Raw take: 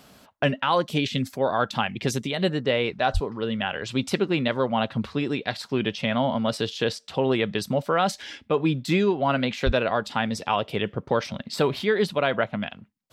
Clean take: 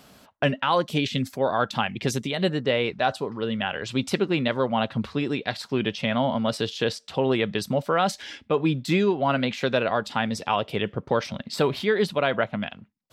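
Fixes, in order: 3.13–3.25 HPF 140 Hz 24 dB/oct; 9.65–9.77 HPF 140 Hz 24 dB/oct

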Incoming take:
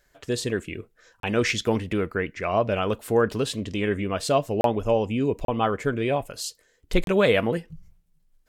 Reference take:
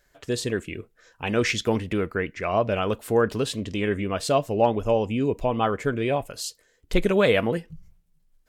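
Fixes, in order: interpolate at 1.2/4.61/5.45/7.04, 32 ms

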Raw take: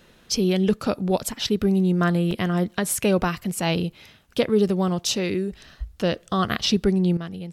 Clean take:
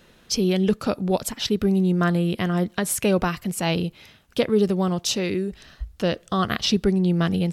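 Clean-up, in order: interpolate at 2.31/3.38, 3.1 ms; gain 0 dB, from 7.17 s +11.5 dB

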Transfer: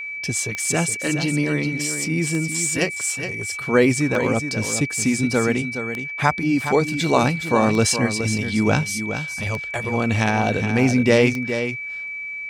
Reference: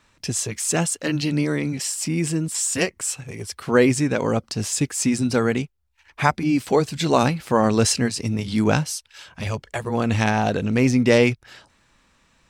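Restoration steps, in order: de-click; notch 2300 Hz, Q 30; inverse comb 0.418 s -9 dB

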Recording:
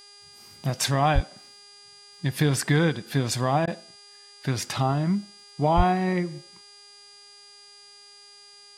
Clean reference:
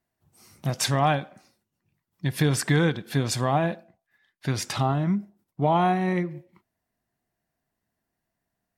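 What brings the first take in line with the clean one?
de-hum 406.3 Hz, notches 25; notch 4800 Hz, Q 30; 1.14–1.26 HPF 140 Hz 24 dB/oct; 5.76–5.88 HPF 140 Hz 24 dB/oct; interpolate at 3.66, 13 ms

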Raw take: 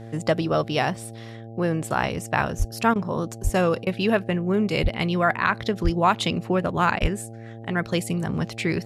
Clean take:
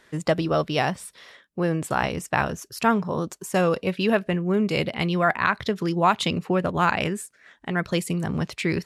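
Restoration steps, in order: de-hum 113.6 Hz, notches 7; de-plosive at 2.58/3.43/4.82/5.83/7.01; interpolate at 2.94/3.85/6.99, 15 ms

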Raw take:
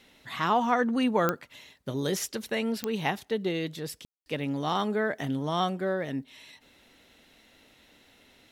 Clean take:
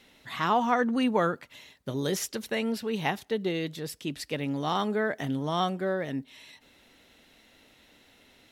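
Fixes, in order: de-click; room tone fill 4.05–4.26

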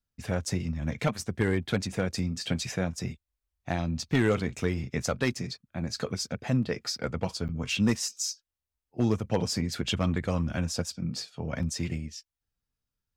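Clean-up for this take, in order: clip repair -16.5 dBFS; interpolate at 7.48, 9 ms

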